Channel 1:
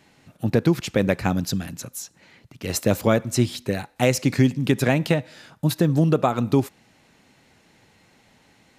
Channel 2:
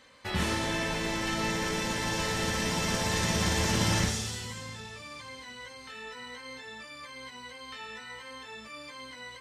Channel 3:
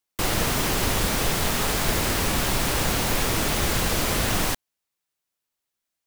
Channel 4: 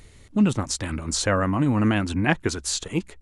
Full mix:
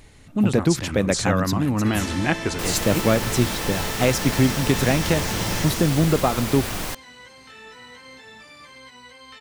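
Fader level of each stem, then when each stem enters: -0.5 dB, -0.5 dB, -5.0 dB, -1.0 dB; 0.00 s, 1.60 s, 2.40 s, 0.00 s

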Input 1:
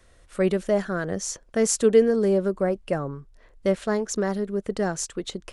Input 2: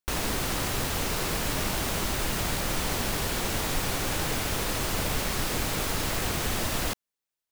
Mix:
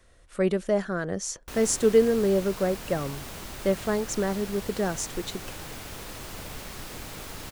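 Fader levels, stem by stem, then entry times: -2.0 dB, -10.5 dB; 0.00 s, 1.40 s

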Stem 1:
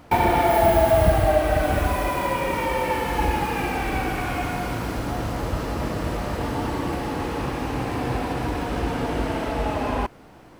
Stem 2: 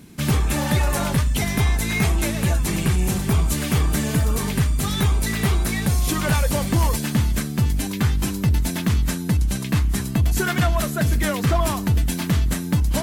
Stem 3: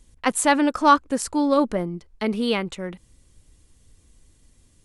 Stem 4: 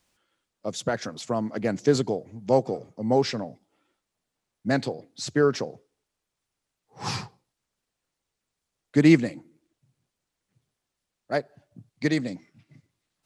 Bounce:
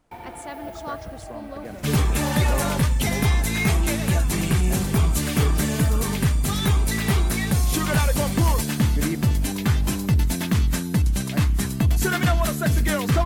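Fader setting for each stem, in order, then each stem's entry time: -20.0 dB, -0.5 dB, -19.0 dB, -12.5 dB; 0.00 s, 1.65 s, 0.00 s, 0.00 s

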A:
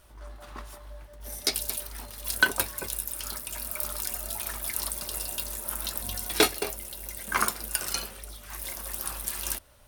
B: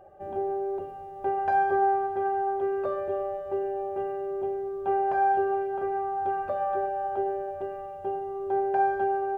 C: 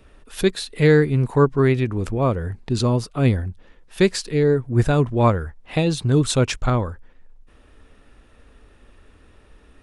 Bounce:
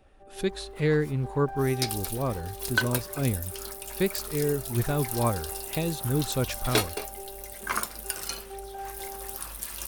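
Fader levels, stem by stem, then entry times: -3.5 dB, -15.0 dB, -9.5 dB; 0.35 s, 0.00 s, 0.00 s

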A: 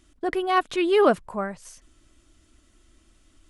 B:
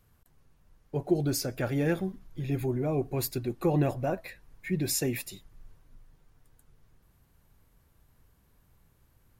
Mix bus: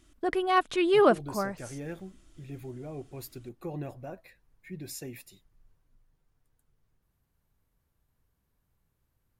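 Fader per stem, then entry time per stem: -2.5 dB, -11.5 dB; 0.00 s, 0.00 s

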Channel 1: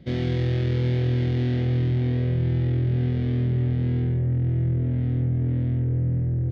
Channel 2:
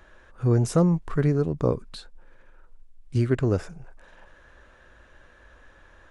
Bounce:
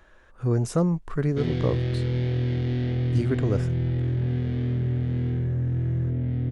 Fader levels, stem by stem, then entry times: -2.5 dB, -2.5 dB; 1.30 s, 0.00 s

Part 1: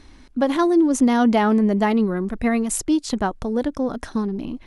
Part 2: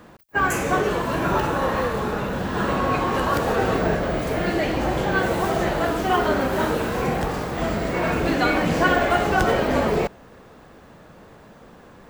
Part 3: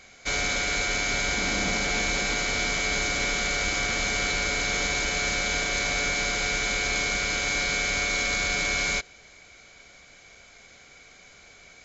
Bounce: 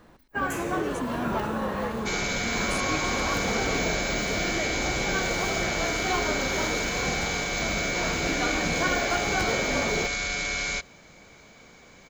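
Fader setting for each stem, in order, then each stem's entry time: -16.5 dB, -8.0 dB, -3.0 dB; 0.00 s, 0.00 s, 1.80 s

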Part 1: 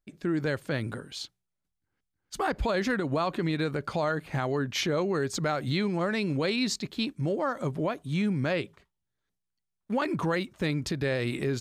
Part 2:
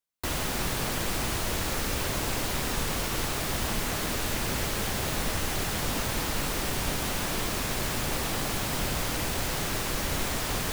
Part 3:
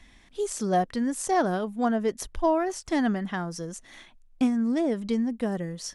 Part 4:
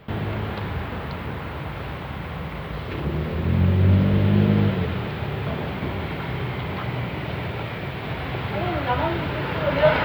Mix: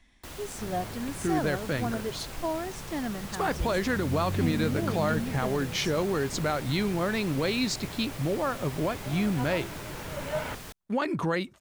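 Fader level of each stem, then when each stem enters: 0.0 dB, -12.5 dB, -8.0 dB, -14.5 dB; 1.00 s, 0.00 s, 0.00 s, 0.50 s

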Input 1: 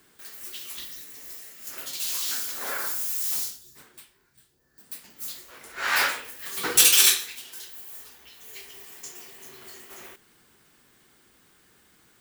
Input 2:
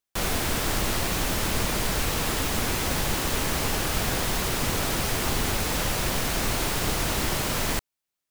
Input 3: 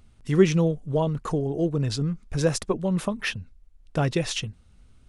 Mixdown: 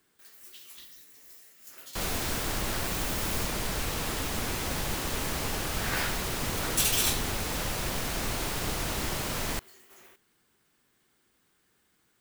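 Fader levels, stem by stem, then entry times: -10.5 dB, -5.5 dB, mute; 0.00 s, 1.80 s, mute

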